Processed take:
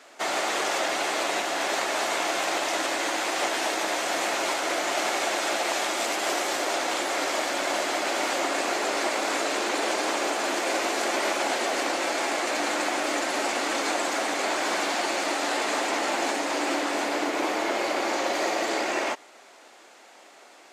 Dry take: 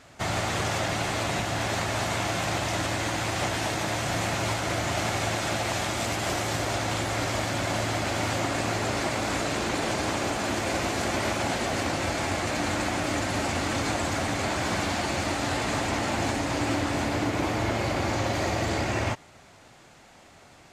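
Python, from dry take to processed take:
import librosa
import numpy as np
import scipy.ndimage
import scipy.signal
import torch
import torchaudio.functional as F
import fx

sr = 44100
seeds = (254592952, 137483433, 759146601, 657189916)

y = scipy.signal.sosfilt(scipy.signal.butter(4, 320.0, 'highpass', fs=sr, output='sos'), x)
y = y * 10.0 ** (2.5 / 20.0)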